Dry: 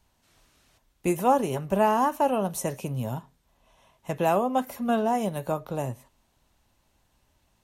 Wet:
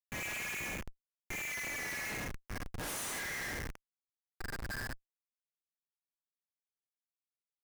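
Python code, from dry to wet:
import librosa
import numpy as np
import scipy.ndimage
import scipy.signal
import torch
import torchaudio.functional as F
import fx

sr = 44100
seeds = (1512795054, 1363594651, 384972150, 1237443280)

p1 = fx.band_shuffle(x, sr, order='4123')
p2 = fx.step_gate(p1, sr, bpm=164, pattern='xx..x..x..xx.x', floor_db=-60.0, edge_ms=4.5)
p3 = p2 + fx.room_flutter(p2, sr, wall_m=5.3, rt60_s=0.22, dry=0)
p4 = fx.paulstretch(p3, sr, seeds[0], factor=4.2, window_s=0.1, from_s=1.87)
p5 = fx.tone_stack(p4, sr, knobs='5-5-5')
y = fx.schmitt(p5, sr, flips_db=-40.0)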